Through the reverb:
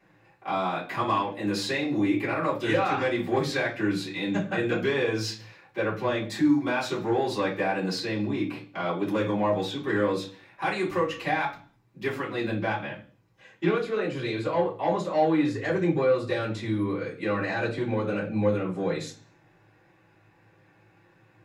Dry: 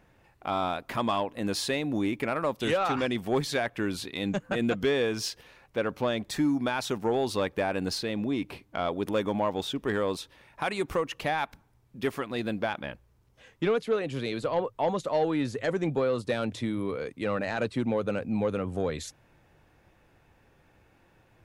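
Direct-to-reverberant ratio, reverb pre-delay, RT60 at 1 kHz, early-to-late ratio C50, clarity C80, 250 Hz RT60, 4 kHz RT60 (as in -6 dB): -10.5 dB, 3 ms, 0.40 s, 9.5 dB, 15.5 dB, 0.55 s, 0.50 s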